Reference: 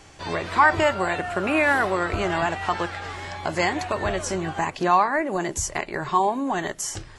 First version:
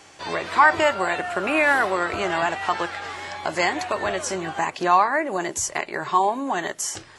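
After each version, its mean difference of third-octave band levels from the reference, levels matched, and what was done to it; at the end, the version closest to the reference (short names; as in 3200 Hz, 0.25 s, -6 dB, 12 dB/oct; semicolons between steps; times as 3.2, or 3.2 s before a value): 2.0 dB: HPF 360 Hz 6 dB/oct; gain +2 dB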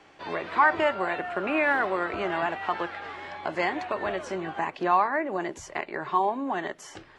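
4.0 dB: three-band isolator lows -17 dB, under 190 Hz, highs -18 dB, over 3800 Hz; gain -3.5 dB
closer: first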